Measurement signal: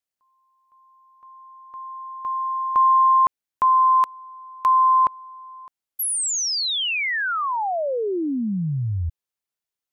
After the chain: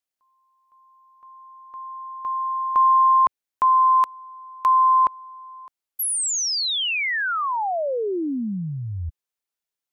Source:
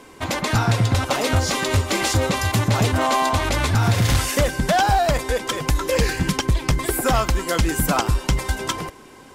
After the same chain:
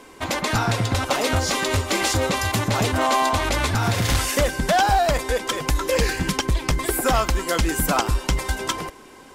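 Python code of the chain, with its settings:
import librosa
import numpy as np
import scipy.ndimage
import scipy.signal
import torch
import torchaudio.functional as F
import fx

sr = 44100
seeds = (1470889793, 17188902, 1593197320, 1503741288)

y = fx.peak_eq(x, sr, hz=120.0, db=-5.5, octaves=1.4)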